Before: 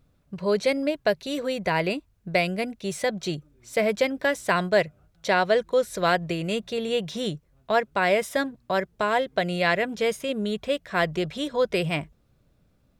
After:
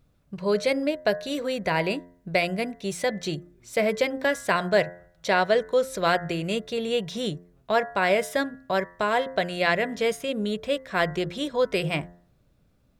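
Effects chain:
hum removal 87.81 Hz, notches 23

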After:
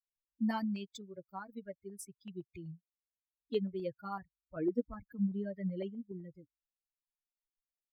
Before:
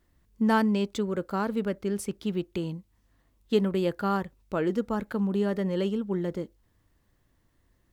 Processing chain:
spectral dynamics exaggerated over time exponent 3
0:04.56–0:06.12: low-shelf EQ 450 Hz +6.5 dB
auto-filter notch saw up 7.9 Hz 680–3,100 Hz
level −5.5 dB

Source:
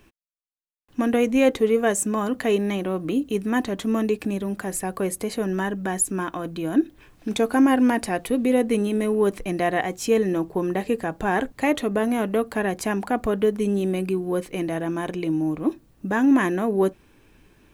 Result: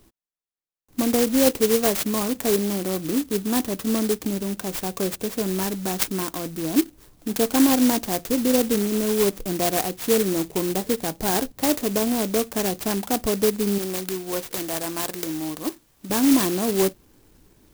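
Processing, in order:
0:13.78–0:16.10: tilt shelving filter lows −9.5 dB, about 650 Hz
converter with an unsteady clock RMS 0.15 ms

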